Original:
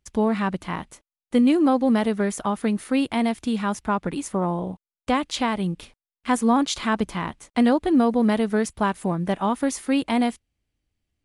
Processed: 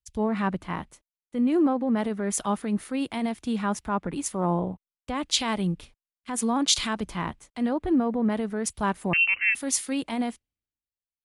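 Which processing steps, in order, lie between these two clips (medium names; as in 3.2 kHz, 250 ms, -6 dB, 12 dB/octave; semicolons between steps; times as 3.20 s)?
peak limiter -18 dBFS, peak gain reduction 10 dB; 9.13–9.55 s: frequency inversion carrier 2.9 kHz; three bands expanded up and down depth 100%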